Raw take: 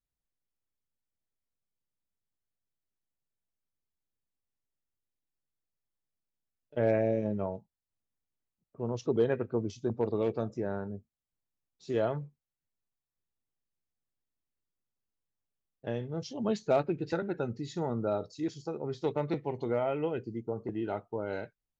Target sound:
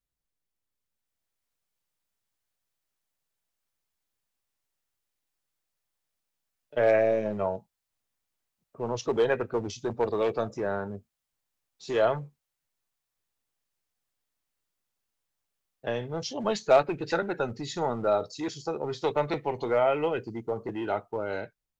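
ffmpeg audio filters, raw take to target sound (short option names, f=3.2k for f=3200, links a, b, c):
-filter_complex "[0:a]acrossover=split=520[a][b];[a]volume=34dB,asoftclip=hard,volume=-34dB[c];[b]dynaudnorm=f=310:g=7:m=8dB[d];[c][d]amix=inputs=2:normalize=0,volume=1.5dB"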